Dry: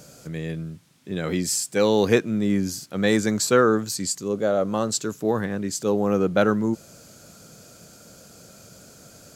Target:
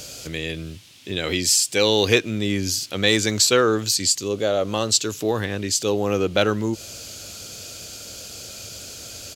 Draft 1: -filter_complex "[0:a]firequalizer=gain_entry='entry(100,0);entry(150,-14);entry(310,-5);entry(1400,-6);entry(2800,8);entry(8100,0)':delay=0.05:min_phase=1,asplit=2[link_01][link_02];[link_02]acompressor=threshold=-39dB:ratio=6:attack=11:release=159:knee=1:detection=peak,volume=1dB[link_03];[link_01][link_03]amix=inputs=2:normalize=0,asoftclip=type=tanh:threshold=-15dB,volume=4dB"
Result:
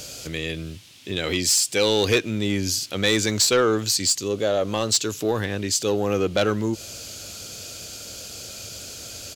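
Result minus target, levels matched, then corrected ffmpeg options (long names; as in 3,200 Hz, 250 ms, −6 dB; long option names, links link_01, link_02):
soft clipping: distortion +17 dB
-filter_complex "[0:a]firequalizer=gain_entry='entry(100,0);entry(150,-14);entry(310,-5);entry(1400,-6);entry(2800,8);entry(8100,0)':delay=0.05:min_phase=1,asplit=2[link_01][link_02];[link_02]acompressor=threshold=-39dB:ratio=6:attack=11:release=159:knee=1:detection=peak,volume=1dB[link_03];[link_01][link_03]amix=inputs=2:normalize=0,asoftclip=type=tanh:threshold=-3.5dB,volume=4dB"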